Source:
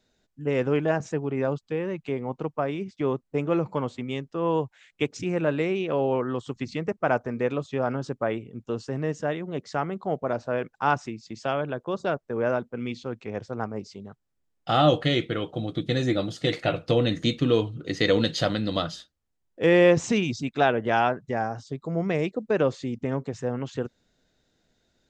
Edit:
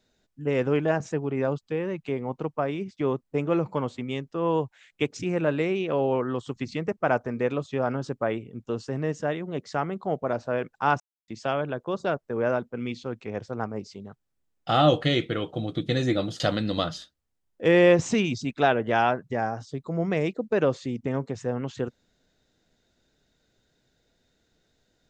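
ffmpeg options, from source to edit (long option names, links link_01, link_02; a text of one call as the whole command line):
ffmpeg -i in.wav -filter_complex "[0:a]asplit=4[link_01][link_02][link_03][link_04];[link_01]atrim=end=11,asetpts=PTS-STARTPTS,afade=type=out:start_time=10.996:duration=0.004:curve=hsin[link_05];[link_02]atrim=start=11:end=11.28,asetpts=PTS-STARTPTS,volume=0[link_06];[link_03]atrim=start=11.28:end=16.402,asetpts=PTS-STARTPTS,afade=type=in:duration=0.004:curve=hsin[link_07];[link_04]atrim=start=18.378[link_08];[link_05][link_06][link_07]concat=n=3:v=0:a=1[link_09];[link_09][link_08]acrossfade=duration=0.004:curve1=hsin:curve2=hsin" out.wav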